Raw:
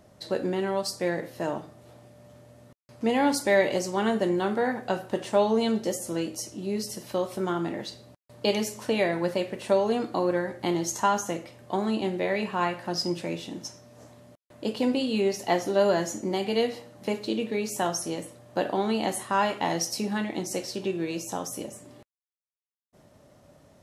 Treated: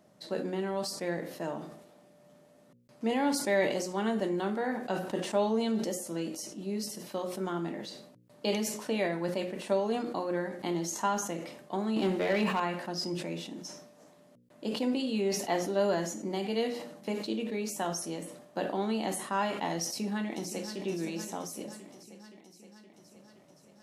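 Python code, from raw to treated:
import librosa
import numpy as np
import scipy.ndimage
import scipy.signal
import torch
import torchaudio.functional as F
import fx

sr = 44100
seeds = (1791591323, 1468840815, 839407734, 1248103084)

y = fx.leveller(x, sr, passes=2, at=(11.96, 12.6))
y = fx.echo_throw(y, sr, start_s=19.84, length_s=1.0, ms=520, feedback_pct=70, wet_db=-10.5)
y = fx.low_shelf_res(y, sr, hz=110.0, db=-13.5, q=1.5)
y = fx.hum_notches(y, sr, base_hz=60, count=9)
y = fx.sustainer(y, sr, db_per_s=64.0)
y = F.gain(torch.from_numpy(y), -6.5).numpy()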